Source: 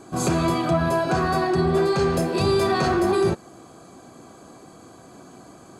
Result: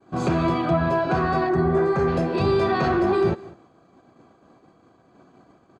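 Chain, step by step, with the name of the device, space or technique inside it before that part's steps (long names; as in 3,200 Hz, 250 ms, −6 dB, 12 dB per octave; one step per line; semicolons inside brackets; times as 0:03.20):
hearing-loss simulation (low-pass filter 3,200 Hz 12 dB per octave; downward expander −38 dBFS)
0:01.49–0:02.08: flat-topped bell 3,600 Hz −10 dB 1.2 octaves
single-tap delay 198 ms −22 dB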